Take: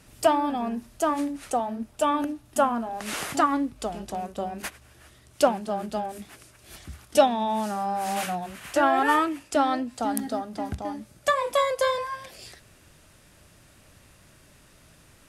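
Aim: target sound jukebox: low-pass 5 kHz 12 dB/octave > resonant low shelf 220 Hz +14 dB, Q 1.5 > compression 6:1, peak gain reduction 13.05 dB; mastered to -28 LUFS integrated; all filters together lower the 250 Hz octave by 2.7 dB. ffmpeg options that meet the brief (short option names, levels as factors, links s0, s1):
-af "lowpass=5000,lowshelf=f=220:t=q:w=1.5:g=14,equalizer=f=250:t=o:g=-8,acompressor=threshold=0.0501:ratio=6,volume=1.78"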